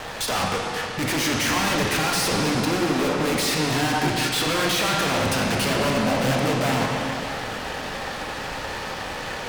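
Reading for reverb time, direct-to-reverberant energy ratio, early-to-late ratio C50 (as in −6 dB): 2.9 s, −1.5 dB, 0.5 dB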